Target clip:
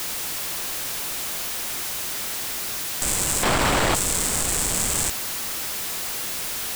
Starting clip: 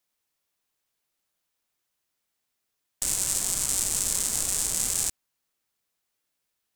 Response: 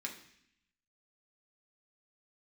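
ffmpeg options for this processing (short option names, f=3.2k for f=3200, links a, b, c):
-filter_complex "[0:a]aeval=exprs='val(0)+0.5*0.075*sgn(val(0))':c=same,asettb=1/sr,asplit=3[a][b][c];[a]atrim=end=3.434[d];[b]atrim=start=3.43:end=3.95,asetpts=PTS-STARTPTS,afade=t=in:d=0.004:c=qsin,afade=t=out:st=0.516:d=0.004:c=qsin,asplit=2[e][f];[f]highpass=f=720:p=1,volume=26dB,asoftclip=type=tanh:threshold=-5.5dB[g];[e][g]amix=inputs=2:normalize=0,lowpass=f=1.4k:p=1,volume=-6dB[h];[c]atrim=start=3.946[i];[d][h]acrossfade=d=0.004:c1=hsin:c2=qsin[j];[j][i]acrossfade=d=0.004:c1=qsin:c2=hsin"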